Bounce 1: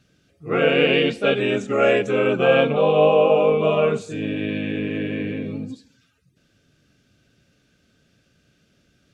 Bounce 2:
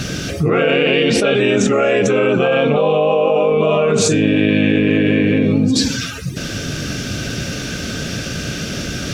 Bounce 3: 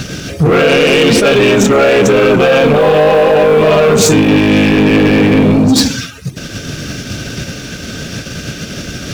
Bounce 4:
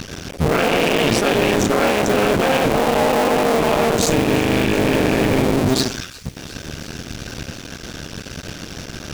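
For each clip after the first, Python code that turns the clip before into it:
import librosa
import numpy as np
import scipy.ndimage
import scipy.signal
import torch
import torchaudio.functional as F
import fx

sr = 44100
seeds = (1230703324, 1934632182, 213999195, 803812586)

y1 = fx.peak_eq(x, sr, hz=5700.0, db=5.5, octaves=0.34)
y1 = fx.env_flatten(y1, sr, amount_pct=100)
y1 = F.gain(torch.from_numpy(y1), -2.0).numpy()
y2 = fx.leveller(y1, sr, passes=3)
y2 = fx.upward_expand(y2, sr, threshold_db=-16.0, expansion=2.5)
y3 = fx.cycle_switch(y2, sr, every=2, mode='muted')
y3 = fx.echo_wet_highpass(y3, sr, ms=355, feedback_pct=77, hz=3600.0, wet_db=-18.0)
y3 = F.gain(torch.from_numpy(y3), -5.5).numpy()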